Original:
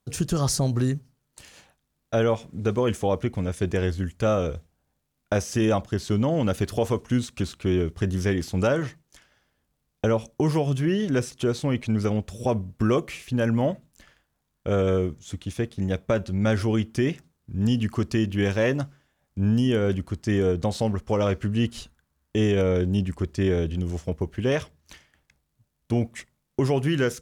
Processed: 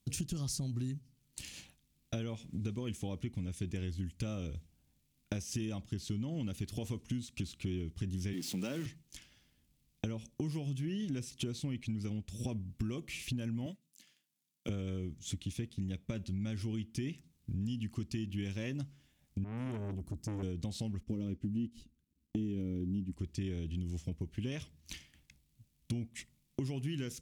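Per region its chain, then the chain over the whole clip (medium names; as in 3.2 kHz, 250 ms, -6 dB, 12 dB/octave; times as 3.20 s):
8.33–8.86 s: jump at every zero crossing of -32 dBFS + high-pass 170 Hz 24 dB/octave
13.66–14.69 s: high-pass 160 Hz 24 dB/octave + treble shelf 2.7 kHz +10 dB + upward expansion, over -49 dBFS
19.44–20.43 s: peaking EQ 2.8 kHz -14 dB 2.3 oct + transformer saturation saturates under 830 Hz
21.03–23.12 s: companding laws mixed up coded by A + FFT filter 130 Hz 0 dB, 270 Hz +9 dB, 790 Hz -9 dB
whole clip: high-order bell 840 Hz -12.5 dB 2.4 oct; compression 6:1, threshold -38 dBFS; trim +2.5 dB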